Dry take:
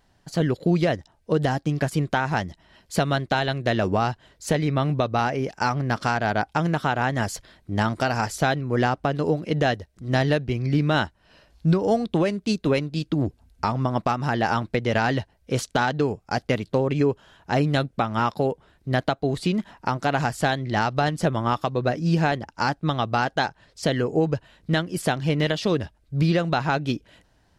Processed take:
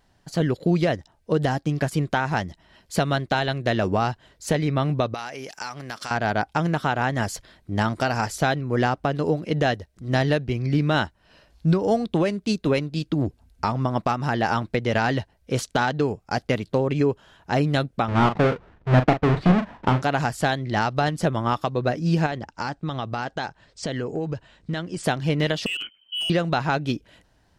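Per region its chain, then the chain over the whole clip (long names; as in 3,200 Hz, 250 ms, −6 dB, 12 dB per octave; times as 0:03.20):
0:05.14–0:06.11: spectral tilt +3.5 dB per octave + downward compressor 2.5 to 1, threshold −33 dBFS
0:18.08–0:20.02: each half-wave held at its own peak + low-pass filter 2,200 Hz + double-tracking delay 39 ms −9 dB
0:22.26–0:25.04: Butterworth low-pass 9,100 Hz 72 dB per octave + downward compressor 4 to 1, threshold −24 dBFS
0:25.66–0:26.30: voice inversion scrambler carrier 3,100 Hz + downward compressor 2 to 1, threshold −28 dBFS + hard clipping −24 dBFS
whole clip: no processing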